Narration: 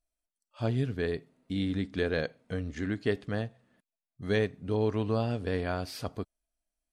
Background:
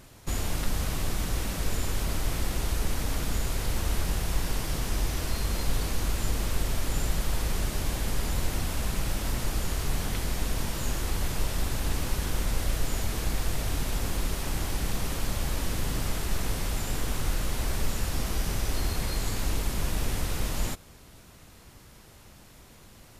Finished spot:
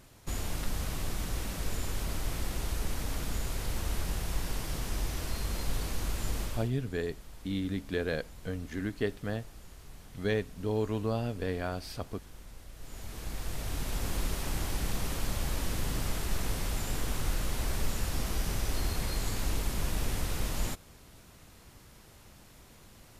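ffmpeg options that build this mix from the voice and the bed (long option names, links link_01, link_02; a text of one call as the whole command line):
ffmpeg -i stem1.wav -i stem2.wav -filter_complex "[0:a]adelay=5950,volume=-2.5dB[link_01];[1:a]volume=13dB,afade=type=out:start_time=6.41:duration=0.3:silence=0.158489,afade=type=in:start_time=12.74:duration=1.43:silence=0.125893[link_02];[link_01][link_02]amix=inputs=2:normalize=0" out.wav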